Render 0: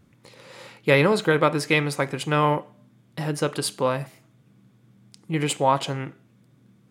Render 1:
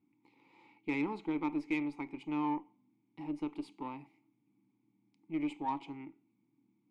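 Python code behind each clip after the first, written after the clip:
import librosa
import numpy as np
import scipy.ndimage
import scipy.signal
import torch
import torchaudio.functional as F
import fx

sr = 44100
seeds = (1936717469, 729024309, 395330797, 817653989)

y = fx.vowel_filter(x, sr, vowel='u')
y = fx.cheby_harmonics(y, sr, harmonics=(8,), levels_db=(-32,), full_scale_db=-17.0)
y = F.gain(torch.from_numpy(y), -4.0).numpy()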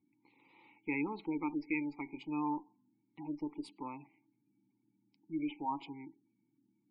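y = fx.spec_gate(x, sr, threshold_db=-25, keep='strong')
y = fx.high_shelf(y, sr, hz=3400.0, db=11.0)
y = F.gain(torch.from_numpy(y), -2.0).numpy()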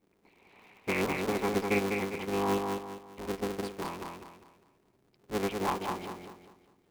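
y = fx.cycle_switch(x, sr, every=3, mode='inverted')
y = fx.echo_feedback(y, sr, ms=201, feedback_pct=36, wet_db=-4.0)
y = F.gain(torch.from_numpy(y), 5.0).numpy()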